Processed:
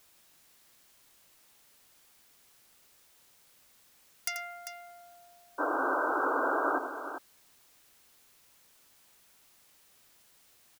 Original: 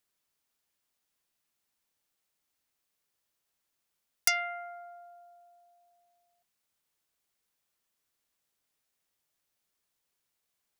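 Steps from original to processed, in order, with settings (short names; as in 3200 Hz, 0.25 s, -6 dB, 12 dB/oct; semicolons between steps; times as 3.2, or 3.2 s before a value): painted sound noise, 5.58–6.79, 260–1600 Hz -21 dBFS; tapped delay 86/395 ms -9.5/-9.5 dB; added noise white -54 dBFS; gain -9 dB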